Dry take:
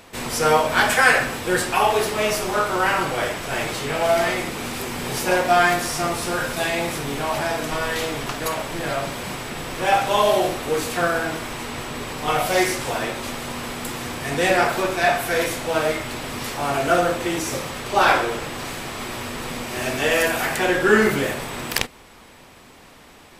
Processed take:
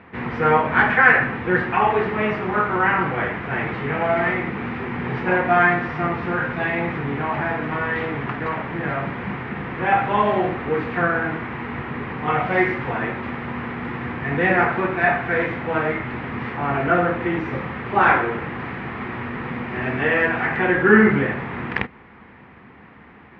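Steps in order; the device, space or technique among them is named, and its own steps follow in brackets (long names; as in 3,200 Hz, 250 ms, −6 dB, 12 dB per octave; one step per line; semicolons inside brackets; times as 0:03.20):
bass cabinet (loudspeaker in its box 73–2,200 Hz, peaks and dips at 73 Hz +7 dB, 130 Hz +4 dB, 200 Hz +7 dB, 600 Hz −8 dB, 1,900 Hz +4 dB)
level +1.5 dB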